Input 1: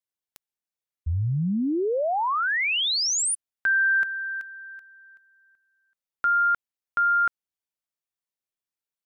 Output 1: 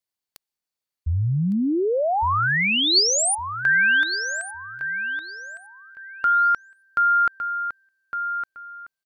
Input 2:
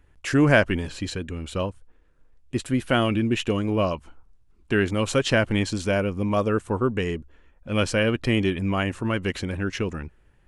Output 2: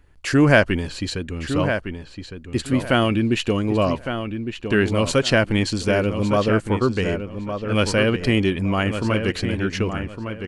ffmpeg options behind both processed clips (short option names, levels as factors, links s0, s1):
-filter_complex "[0:a]equalizer=f=4500:w=7.5:g=7.5,asplit=2[s0][s1];[s1]adelay=1159,lowpass=f=3600:p=1,volume=0.398,asplit=2[s2][s3];[s3]adelay=1159,lowpass=f=3600:p=1,volume=0.26,asplit=2[s4][s5];[s5]adelay=1159,lowpass=f=3600:p=1,volume=0.26[s6];[s0][s2][s4][s6]amix=inputs=4:normalize=0,volume=1.41"